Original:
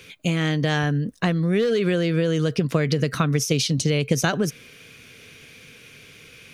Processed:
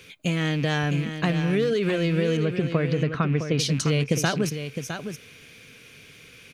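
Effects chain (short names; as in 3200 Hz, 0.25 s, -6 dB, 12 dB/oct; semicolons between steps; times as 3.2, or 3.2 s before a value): rattling part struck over -26 dBFS, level -26 dBFS; 2.37–3.59 LPF 2300 Hz 12 dB/oct; echo 0.66 s -8.5 dB; gain -2.5 dB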